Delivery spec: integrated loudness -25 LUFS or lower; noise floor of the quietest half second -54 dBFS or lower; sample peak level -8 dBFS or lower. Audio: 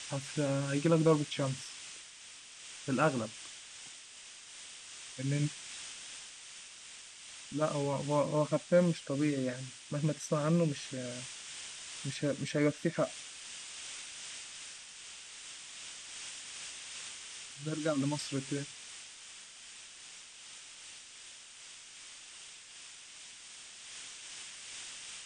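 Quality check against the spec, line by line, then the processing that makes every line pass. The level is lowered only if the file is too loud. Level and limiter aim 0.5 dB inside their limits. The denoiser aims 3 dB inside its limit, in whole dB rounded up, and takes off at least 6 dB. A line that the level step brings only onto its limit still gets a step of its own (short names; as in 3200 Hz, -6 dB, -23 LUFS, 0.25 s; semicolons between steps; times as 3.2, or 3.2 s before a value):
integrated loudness -35.5 LUFS: OK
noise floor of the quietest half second -52 dBFS: fail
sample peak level -14.5 dBFS: OK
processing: denoiser 6 dB, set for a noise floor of -52 dBFS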